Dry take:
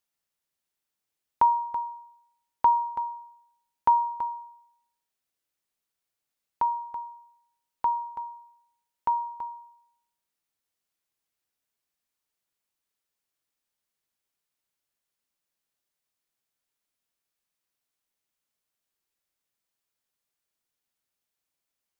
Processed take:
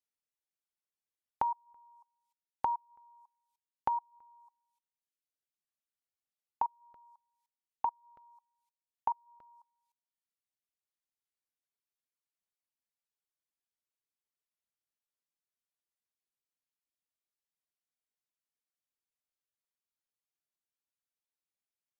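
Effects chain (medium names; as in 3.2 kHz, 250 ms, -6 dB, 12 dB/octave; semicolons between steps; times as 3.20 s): level held to a coarse grid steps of 24 dB; reverb removal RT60 1.3 s; low-pass that closes with the level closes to 690 Hz, closed at -30.5 dBFS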